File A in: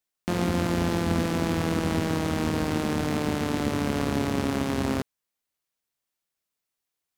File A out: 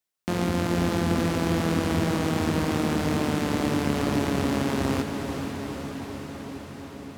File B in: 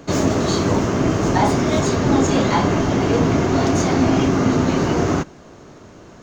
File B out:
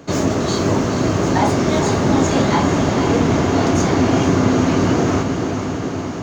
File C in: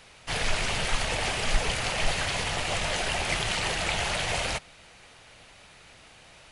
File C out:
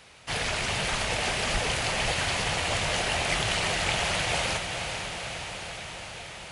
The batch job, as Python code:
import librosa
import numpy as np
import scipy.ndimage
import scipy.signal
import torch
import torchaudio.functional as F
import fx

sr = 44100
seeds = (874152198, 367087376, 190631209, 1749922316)

p1 = scipy.signal.sosfilt(scipy.signal.butter(2, 45.0, 'highpass', fs=sr, output='sos'), x)
y = p1 + fx.echo_diffused(p1, sr, ms=467, feedback_pct=73, wet_db=-7.0, dry=0)